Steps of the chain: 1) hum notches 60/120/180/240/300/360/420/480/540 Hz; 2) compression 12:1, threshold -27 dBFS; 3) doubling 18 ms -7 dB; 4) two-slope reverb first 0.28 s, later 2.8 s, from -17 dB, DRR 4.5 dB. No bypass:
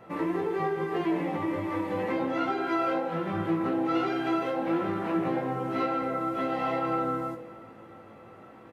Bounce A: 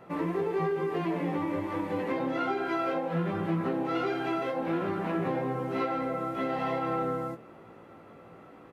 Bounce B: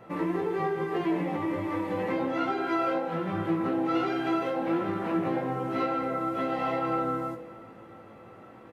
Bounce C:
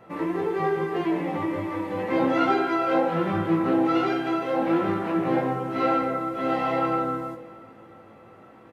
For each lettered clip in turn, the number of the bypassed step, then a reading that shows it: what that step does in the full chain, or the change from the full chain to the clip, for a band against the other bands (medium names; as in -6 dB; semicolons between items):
4, momentary loudness spread change -2 LU; 1, momentary loudness spread change +2 LU; 2, mean gain reduction 3.0 dB